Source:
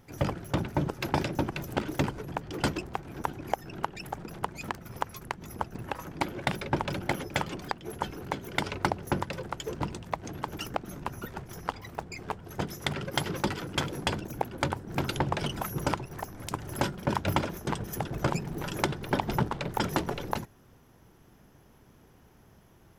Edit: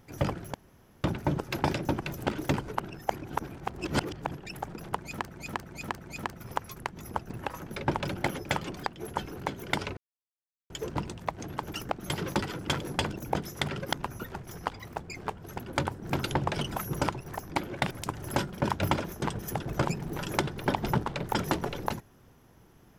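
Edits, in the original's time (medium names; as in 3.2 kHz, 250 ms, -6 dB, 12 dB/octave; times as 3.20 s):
0.54 s: insert room tone 0.50 s
2.26–3.87 s: reverse
4.49–4.84 s: loop, 4 plays
6.16–6.56 s: move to 16.36 s
8.82–9.55 s: mute
10.95–12.60 s: swap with 13.18–14.43 s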